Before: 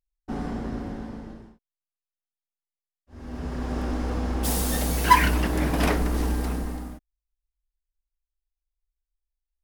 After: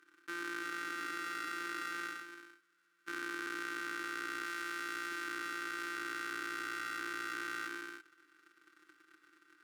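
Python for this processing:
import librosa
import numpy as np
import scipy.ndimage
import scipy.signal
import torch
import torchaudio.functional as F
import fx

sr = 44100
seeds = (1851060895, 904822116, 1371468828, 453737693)

p1 = np.r_[np.sort(x[:len(x) // 256 * 256].reshape(-1, 256), axis=1).ravel(), x[len(x) // 256 * 256:]]
p2 = np.diff(p1, prepend=0.0)
p3 = fx.rider(p2, sr, range_db=4, speed_s=0.5)
p4 = p2 + (p3 * librosa.db_to_amplitude(-2.0))
p5 = 10.0 ** (-4.5 / 20.0) * np.tanh(p4 / 10.0 ** (-4.5 / 20.0))
p6 = fx.double_bandpass(p5, sr, hz=670.0, octaves=2.2)
p7 = p6 + 0.58 * np.pad(p6, (int(2.6 * sr / 1000.0), 0))[:len(p6)]
p8 = fx.echo_feedback(p7, sr, ms=341, feedback_pct=23, wet_db=-8.0)
p9 = fx.env_flatten(p8, sr, amount_pct=100)
y = p9 * librosa.db_to_amplitude(6.5)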